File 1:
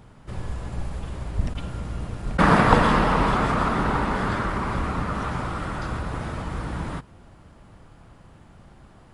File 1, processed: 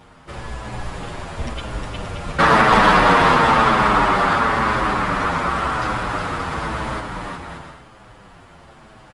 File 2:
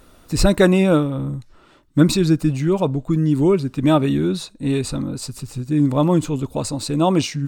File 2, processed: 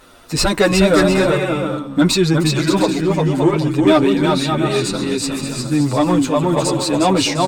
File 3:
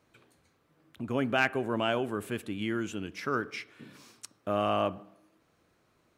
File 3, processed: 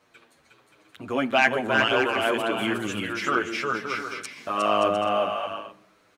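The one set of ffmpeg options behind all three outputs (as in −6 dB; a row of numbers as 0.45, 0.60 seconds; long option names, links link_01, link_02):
-filter_complex "[0:a]asplit=2[link_01][link_02];[link_02]aecho=0:1:360|576|705.6|783.4|830:0.631|0.398|0.251|0.158|0.1[link_03];[link_01][link_03]amix=inputs=2:normalize=0,asplit=2[link_04][link_05];[link_05]highpass=frequency=720:poles=1,volume=11dB,asoftclip=type=tanh:threshold=-0.5dB[link_06];[link_04][link_06]amix=inputs=2:normalize=0,lowpass=frequency=6000:poles=1,volume=-6dB,acontrast=65,asplit=2[link_07][link_08];[link_08]adelay=8,afreqshift=-0.96[link_09];[link_07][link_09]amix=inputs=2:normalize=1,volume=-1dB"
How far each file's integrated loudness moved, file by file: +7.5, +3.0, +7.0 LU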